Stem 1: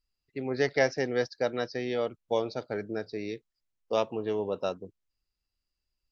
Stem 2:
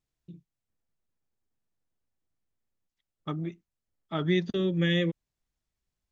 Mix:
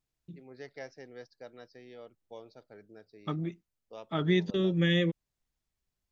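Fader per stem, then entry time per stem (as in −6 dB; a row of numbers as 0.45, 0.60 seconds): −19.0, −0.5 decibels; 0.00, 0.00 seconds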